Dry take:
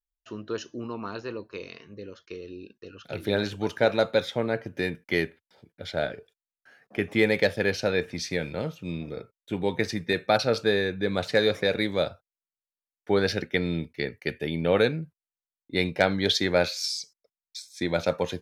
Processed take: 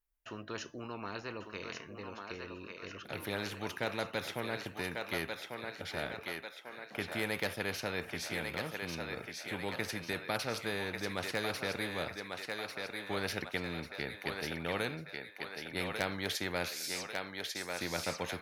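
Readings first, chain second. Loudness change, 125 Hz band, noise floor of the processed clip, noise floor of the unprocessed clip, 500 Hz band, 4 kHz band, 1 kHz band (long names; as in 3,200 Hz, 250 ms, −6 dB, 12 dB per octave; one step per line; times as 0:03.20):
−11.0 dB, −11.0 dB, −52 dBFS, below −85 dBFS, −13.5 dB, −8.5 dB, −7.0 dB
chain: flat-topped bell 5,100 Hz −8 dB
feedback echo with a high-pass in the loop 1,145 ms, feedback 41%, high-pass 630 Hz, level −6 dB
every bin compressed towards the loudest bin 2 to 1
level −8.5 dB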